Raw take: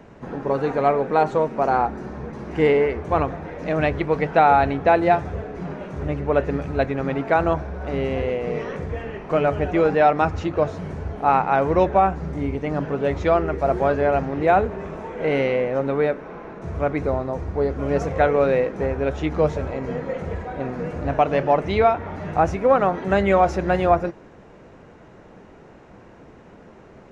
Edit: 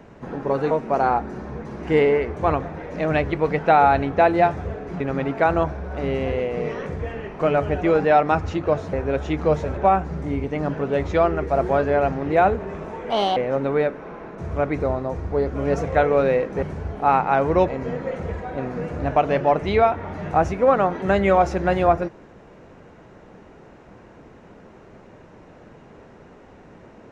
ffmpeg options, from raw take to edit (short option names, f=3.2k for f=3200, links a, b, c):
-filter_complex "[0:a]asplit=9[a][b][c][d][e][f][g][h][i];[a]atrim=end=0.712[j];[b]atrim=start=1.388:end=5.682[k];[c]atrim=start=6.898:end=10.832[l];[d]atrim=start=18.858:end=19.702[m];[e]atrim=start=11.878:end=15.214[n];[f]atrim=start=15.21:end=15.6,asetpts=PTS-STARTPTS,asetrate=64827,aresample=44100[o];[g]atrim=start=15.596:end=18.862[p];[h]atrim=start=10.828:end=11.882[q];[i]atrim=start=19.698[r];[j][k]acrossfade=d=0.004:c1=hsin:c2=hsin[s];[s][l]acrossfade=d=0.004:c1=hsin:c2=hsin[t];[t][m]acrossfade=d=0.004:c1=hsin:c2=hsin[u];[u][n]acrossfade=d=0.004:c1=hsin:c2=hsin[v];[v][o]acrossfade=d=0.004:c1=hsin:c2=hsin[w];[w][p]acrossfade=d=0.004:c1=hsin:c2=hsin[x];[x][q]acrossfade=d=0.004:c1=hsin:c2=hsin[y];[y][r]acrossfade=d=0.004:c1=hsin:c2=hsin"